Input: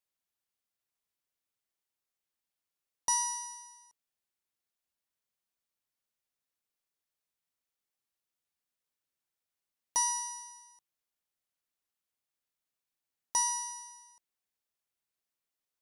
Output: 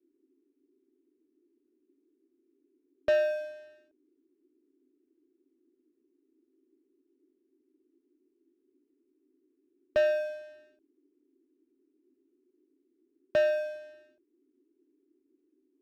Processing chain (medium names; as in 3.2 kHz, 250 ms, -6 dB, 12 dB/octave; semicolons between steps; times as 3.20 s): bass shelf 240 Hz +9.5 dB; mistuned SSB -350 Hz 200–3100 Hz; waveshaping leveller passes 2; band noise 260–390 Hz -70 dBFS; upward expansion 1.5:1, over -43 dBFS; trim +6 dB